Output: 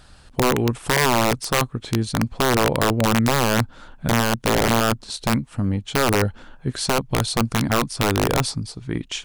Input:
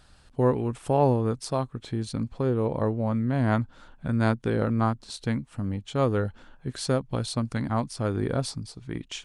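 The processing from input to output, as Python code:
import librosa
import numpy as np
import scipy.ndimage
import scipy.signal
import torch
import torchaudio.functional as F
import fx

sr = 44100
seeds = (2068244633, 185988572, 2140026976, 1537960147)

p1 = fx.over_compress(x, sr, threshold_db=-25.0, ratio=-0.5)
p2 = x + (p1 * librosa.db_to_amplitude(-1.0))
p3 = (np.mod(10.0 ** (12.5 / 20.0) * p2 + 1.0, 2.0) - 1.0) / 10.0 ** (12.5 / 20.0)
y = p3 * librosa.db_to_amplitude(1.5)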